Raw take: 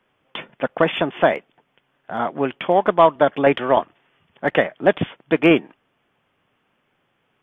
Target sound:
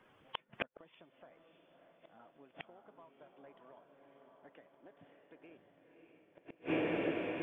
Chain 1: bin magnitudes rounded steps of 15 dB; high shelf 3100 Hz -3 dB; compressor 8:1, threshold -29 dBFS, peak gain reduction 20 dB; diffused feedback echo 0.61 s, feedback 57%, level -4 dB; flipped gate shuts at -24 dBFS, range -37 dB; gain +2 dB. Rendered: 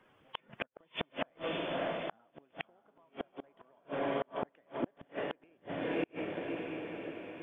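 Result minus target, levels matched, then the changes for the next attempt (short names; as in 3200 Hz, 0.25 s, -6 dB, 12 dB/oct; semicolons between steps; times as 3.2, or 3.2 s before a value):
compressor: peak gain reduction +7.5 dB
change: compressor 8:1, threshold -20.5 dBFS, peak gain reduction 13 dB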